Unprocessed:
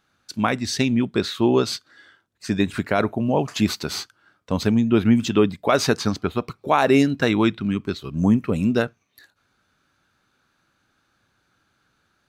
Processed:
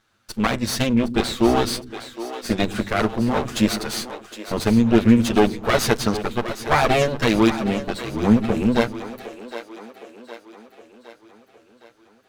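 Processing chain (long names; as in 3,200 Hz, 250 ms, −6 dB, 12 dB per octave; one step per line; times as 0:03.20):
lower of the sound and its delayed copy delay 8.9 ms
echo with a time of its own for lows and highs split 310 Hz, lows 118 ms, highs 763 ms, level −12 dB
level +3 dB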